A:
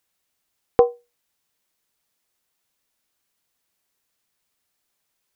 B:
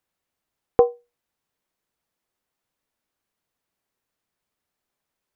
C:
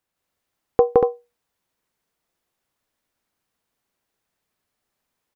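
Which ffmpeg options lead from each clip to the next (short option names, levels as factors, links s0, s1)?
-af "highshelf=f=2200:g=-10.5"
-af "aecho=1:1:166.2|236.2:1|0.708"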